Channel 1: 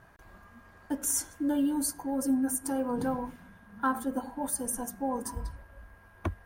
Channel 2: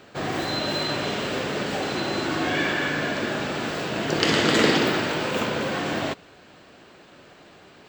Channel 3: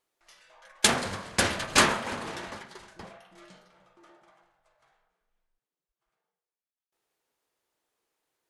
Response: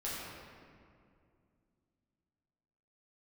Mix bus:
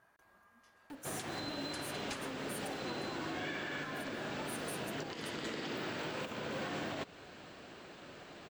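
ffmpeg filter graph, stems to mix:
-filter_complex "[0:a]highpass=frequency=430:poles=1,asoftclip=type=tanh:threshold=-33.5dB,volume=-9dB,asplit=2[link_01][link_02];[1:a]acompressor=threshold=-25dB:ratio=6,adelay=900,volume=-2.5dB[link_03];[2:a]tremolo=f=6.3:d=0.47,adelay=350,volume=-15dB[link_04];[link_02]apad=whole_len=387600[link_05];[link_03][link_05]sidechaincompress=threshold=-53dB:ratio=8:attack=16:release=1420[link_06];[link_01][link_06][link_04]amix=inputs=3:normalize=0,alimiter=level_in=6dB:limit=-24dB:level=0:latency=1:release=204,volume=-6dB"

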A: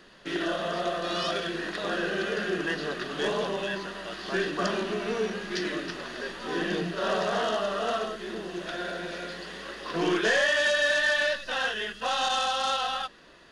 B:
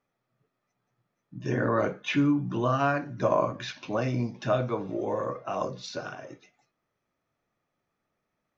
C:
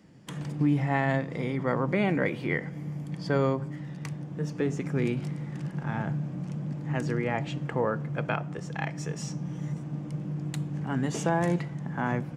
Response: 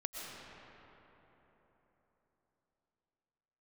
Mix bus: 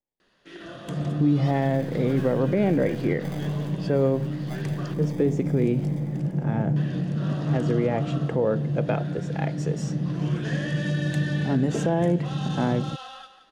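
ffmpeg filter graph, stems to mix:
-filter_complex "[0:a]adelay=200,volume=-12dB,asplit=3[link_01][link_02][link_03];[link_01]atrim=end=4.94,asetpts=PTS-STARTPTS,afade=type=out:start_time=4.936:duration=0.004:curve=hsin[link_04];[link_02]atrim=start=4.94:end=6.76,asetpts=PTS-STARTPTS,volume=0[link_05];[link_03]atrim=start=6.76,asetpts=PTS-STARTPTS,afade=type=in:duration=0.004:curve=hsin[link_06];[link_04][link_05][link_06]concat=n=3:v=0:a=1,asplit=2[link_07][link_08];[link_08]volume=-11dB[link_09];[1:a]bass=frequency=250:gain=-4,treble=frequency=4000:gain=13,acrusher=samples=32:mix=1:aa=0.000001,aeval=exprs='max(val(0),0)':channel_layout=same,volume=-13dB,asplit=2[link_10][link_11];[link_11]volume=-6.5dB[link_12];[2:a]lowshelf=frequency=790:width_type=q:width=1.5:gain=8.5,adelay=600,volume=-1.5dB[link_13];[link_09][link_12]amix=inputs=2:normalize=0,aecho=0:1:174|348|522|696|870:1|0.36|0.13|0.0467|0.0168[link_14];[link_07][link_10][link_13][link_14]amix=inputs=4:normalize=0,alimiter=limit=-12.5dB:level=0:latency=1:release=153"

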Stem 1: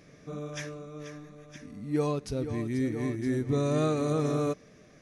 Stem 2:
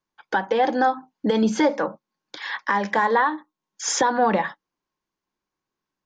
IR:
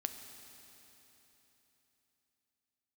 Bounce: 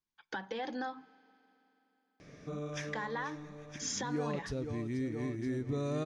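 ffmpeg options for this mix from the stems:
-filter_complex "[0:a]adelay=2200,volume=0.5dB[link_01];[1:a]equalizer=frequency=680:width=0.44:gain=-11,volume=-6.5dB,asplit=3[link_02][link_03][link_04];[link_02]atrim=end=1.13,asetpts=PTS-STARTPTS,afade=type=out:start_time=1.126:duration=0.004:curve=hsin[link_05];[link_03]atrim=start=1.13:end=2.88,asetpts=PTS-STARTPTS,volume=0[link_06];[link_04]atrim=start=2.88,asetpts=PTS-STARTPTS,afade=type=in:duration=0.004:curve=hsin[link_07];[link_05][link_06][link_07]concat=n=3:v=0:a=1,asplit=2[link_08][link_09];[link_09]volume=-14.5dB[link_10];[2:a]atrim=start_sample=2205[link_11];[link_10][link_11]afir=irnorm=-1:irlink=0[link_12];[link_01][link_08][link_12]amix=inputs=3:normalize=0,lowpass=7000,acompressor=threshold=-38dB:ratio=2"

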